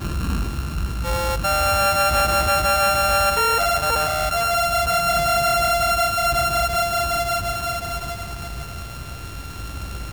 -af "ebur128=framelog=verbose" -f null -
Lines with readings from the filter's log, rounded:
Integrated loudness:
  I:         -19.5 LUFS
  Threshold: -30.2 LUFS
Loudness range:
  LRA:         6.4 LU
  Threshold: -39.4 LUFS
  LRA low:   -24.4 LUFS
  LRA high:  -18.0 LUFS